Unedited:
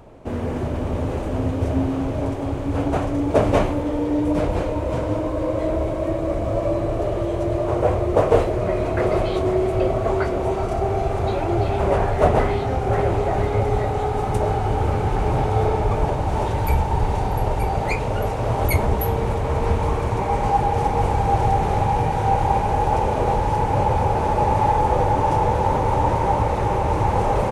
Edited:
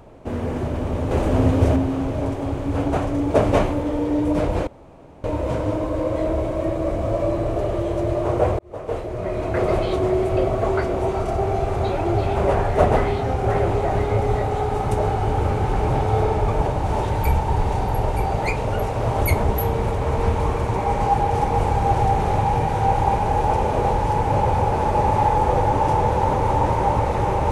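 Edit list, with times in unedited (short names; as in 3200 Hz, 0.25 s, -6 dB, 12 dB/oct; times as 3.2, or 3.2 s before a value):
1.11–1.76 gain +5.5 dB
4.67 insert room tone 0.57 s
8.02–9.12 fade in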